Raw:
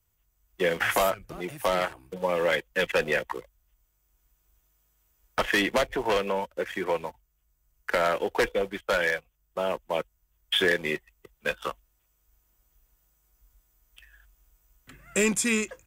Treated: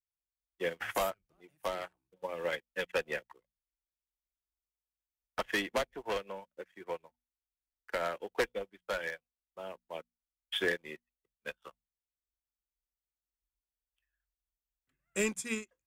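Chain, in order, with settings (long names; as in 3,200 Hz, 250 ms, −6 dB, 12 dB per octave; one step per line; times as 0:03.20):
mains-hum notches 60/120/180/240 Hz
expander for the loud parts 2.5 to 1, over −38 dBFS
level −5 dB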